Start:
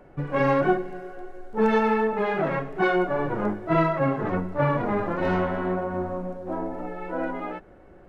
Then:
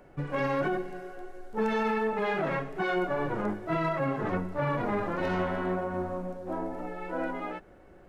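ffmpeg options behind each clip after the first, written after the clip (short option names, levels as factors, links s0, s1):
-af "highshelf=f=3000:g=8.5,alimiter=limit=0.15:level=0:latency=1:release=26,volume=0.631"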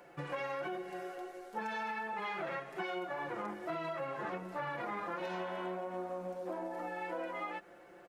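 -af "highpass=f=790:p=1,aecho=1:1:5.8:0.65,acompressor=threshold=0.0112:ratio=6,volume=1.33"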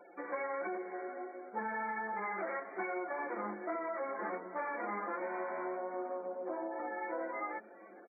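-filter_complex "[0:a]afftfilt=real='re*gte(hypot(re,im),0.00224)':imag='im*gte(hypot(re,im),0.00224)':win_size=1024:overlap=0.75,asplit=5[s0][s1][s2][s3][s4];[s1]adelay=411,afreqshift=-110,volume=0.0891[s5];[s2]adelay=822,afreqshift=-220,volume=0.049[s6];[s3]adelay=1233,afreqshift=-330,volume=0.0269[s7];[s4]adelay=1644,afreqshift=-440,volume=0.0148[s8];[s0][s5][s6][s7][s8]amix=inputs=5:normalize=0,afftfilt=real='re*between(b*sr/4096,190,2400)':imag='im*between(b*sr/4096,190,2400)':win_size=4096:overlap=0.75,volume=1.12"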